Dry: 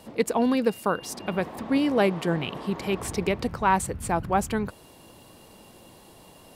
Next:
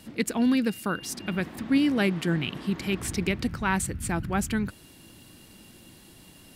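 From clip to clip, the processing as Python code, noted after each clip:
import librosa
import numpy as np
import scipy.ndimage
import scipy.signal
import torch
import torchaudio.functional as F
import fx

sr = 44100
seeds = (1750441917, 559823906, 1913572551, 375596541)

y = fx.band_shelf(x, sr, hz=690.0, db=-10.5, octaves=1.7)
y = y * librosa.db_to_amplitude(1.5)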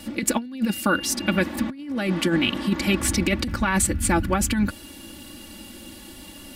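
y = x + 0.83 * np.pad(x, (int(3.5 * sr / 1000.0), 0))[:len(x)]
y = fx.over_compress(y, sr, threshold_db=-25.0, ratio=-0.5)
y = y * librosa.db_to_amplitude(4.0)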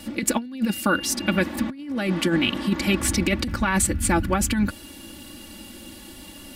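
y = x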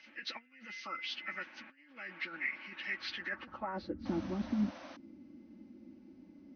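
y = fx.freq_compress(x, sr, knee_hz=1100.0, ratio=1.5)
y = fx.spec_paint(y, sr, seeds[0], shape='noise', start_s=4.05, length_s=0.92, low_hz=510.0, high_hz=6300.0, level_db=-21.0)
y = fx.filter_sweep_bandpass(y, sr, from_hz=2300.0, to_hz=250.0, start_s=3.09, end_s=4.14, q=2.0)
y = y * librosa.db_to_amplitude(-8.0)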